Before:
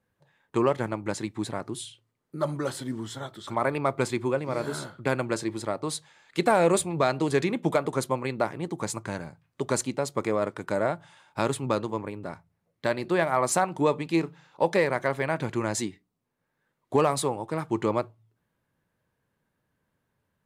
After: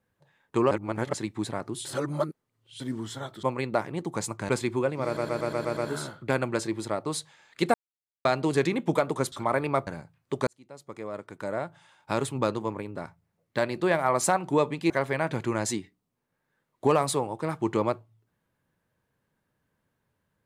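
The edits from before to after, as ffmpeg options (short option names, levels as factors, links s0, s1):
-filter_complex "[0:a]asplit=19[s0][s1][s2][s3][s4][s5][s6][s7][s8][s9][s10][s11][s12][s13][s14][s15][s16][s17][s18];[s0]atrim=end=0.712[s19];[s1]atrim=start=0.708:end=1.132,asetpts=PTS-STARTPTS,areverse[s20];[s2]atrim=start=1.128:end=1.852[s21];[s3]atrim=start=1.848:end=2.802,asetpts=PTS-STARTPTS,areverse[s22];[s4]atrim=start=2.798:end=3.432[s23];[s5]atrim=start=8.088:end=9.152[s24];[s6]atrim=start=3.978:end=4.662[s25];[s7]atrim=start=4.538:end=4.662[s26];[s8]atrim=start=4.538:end=4.662[s27];[s9]atrim=start=4.538:end=4.662[s28];[s10]atrim=start=4.538:end=4.662[s29];[s11]atrim=start=4.538:end=4.662[s30];[s12]atrim=start=4.538:end=6.51,asetpts=PTS-STARTPTS,afade=t=out:st=1.968:d=0.004:c=hsin[s31];[s13]atrim=start=6.51:end=7.02,asetpts=PTS-STARTPTS,volume=0[s32];[s14]atrim=start=7.02:end=8.092,asetpts=PTS-STARTPTS,afade=t=in:d=0.004:c=hsin[s33];[s15]atrim=start=3.428:end=3.982[s34];[s16]atrim=start=9.148:end=9.75,asetpts=PTS-STARTPTS,afade=t=out:st=0.598:d=0.004:c=hsin[s35];[s17]atrim=start=9.75:end=14.182,asetpts=PTS-STARTPTS,afade=t=in:d=2[s36];[s18]atrim=start=14.988[s37];[s19][s20]acrossfade=d=0.004:c1=hsin:c2=hsin[s38];[s38][s21]acrossfade=d=0.004:c1=hsin:c2=hsin[s39];[s39][s22]acrossfade=d=0.004:c1=hsin:c2=hsin[s40];[s40][s23]acrossfade=d=0.004:c1=hsin:c2=hsin[s41];[s41][s24]acrossfade=d=0.004:c1=hsin:c2=hsin[s42];[s42][s25]acrossfade=d=0.004:c1=hsin:c2=hsin[s43];[s43][s26]acrossfade=d=0.004:c1=hsin:c2=hsin[s44];[s44][s27]acrossfade=d=0.004:c1=hsin:c2=hsin[s45];[s45][s28]acrossfade=d=0.004:c1=hsin:c2=hsin[s46];[s46][s29]acrossfade=d=0.004:c1=hsin:c2=hsin[s47];[s47][s30]acrossfade=d=0.004:c1=hsin:c2=hsin[s48];[s31][s32][s33]concat=n=3:v=0:a=1[s49];[s48][s49]acrossfade=d=0.004:c1=hsin:c2=hsin[s50];[s50][s34]acrossfade=d=0.004:c1=hsin:c2=hsin[s51];[s35][s36]concat=n=2:v=0:a=1[s52];[s51][s52]acrossfade=d=0.004:c1=hsin:c2=hsin[s53];[s53][s37]acrossfade=d=0.004:c1=hsin:c2=hsin"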